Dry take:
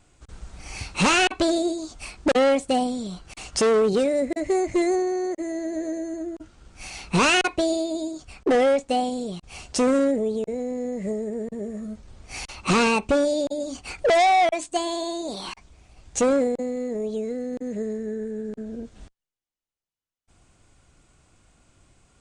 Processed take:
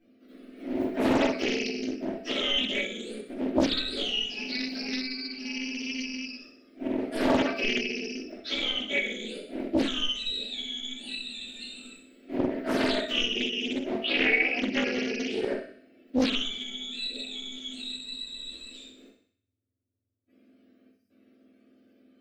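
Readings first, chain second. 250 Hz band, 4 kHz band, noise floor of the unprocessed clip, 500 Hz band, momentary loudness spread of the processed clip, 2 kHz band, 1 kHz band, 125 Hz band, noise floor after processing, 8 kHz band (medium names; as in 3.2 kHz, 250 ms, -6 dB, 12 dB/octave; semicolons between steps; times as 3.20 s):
-4.5 dB, +3.0 dB, -85 dBFS, -10.0 dB, 13 LU, -1.5 dB, -13.5 dB, -9.5 dB, -72 dBFS, -12.0 dB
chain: spectrum inverted on a logarithmic axis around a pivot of 1.3 kHz; time-frequency box 20.90–21.10 s, 200–4700 Hz -29 dB; treble shelf 3.3 kHz +11.5 dB; waveshaping leveller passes 1; compression 2.5:1, threshold -23 dBFS, peak gain reduction 9 dB; flange 1.7 Hz, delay 9.4 ms, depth 6.8 ms, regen +66%; distance through air 450 m; static phaser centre 390 Hz, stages 4; thinning echo 63 ms, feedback 54%, high-pass 580 Hz, level -7 dB; simulated room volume 180 m³, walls furnished, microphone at 2.9 m; loudspeaker Doppler distortion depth 0.7 ms; trim +1.5 dB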